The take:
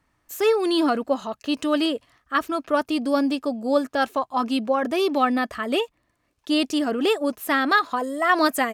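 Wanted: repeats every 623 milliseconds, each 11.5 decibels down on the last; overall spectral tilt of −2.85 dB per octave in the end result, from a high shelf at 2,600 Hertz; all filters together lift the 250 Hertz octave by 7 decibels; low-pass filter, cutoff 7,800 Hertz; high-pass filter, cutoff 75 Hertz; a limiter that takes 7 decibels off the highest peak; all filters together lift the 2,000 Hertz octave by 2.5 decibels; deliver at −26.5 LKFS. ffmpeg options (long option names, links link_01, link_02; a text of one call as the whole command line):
ffmpeg -i in.wav -af "highpass=75,lowpass=7800,equalizer=frequency=250:width_type=o:gain=8.5,equalizer=frequency=2000:width_type=o:gain=6,highshelf=frequency=2600:gain=-7.5,alimiter=limit=-13dB:level=0:latency=1,aecho=1:1:623|1246|1869:0.266|0.0718|0.0194,volume=-5.5dB" out.wav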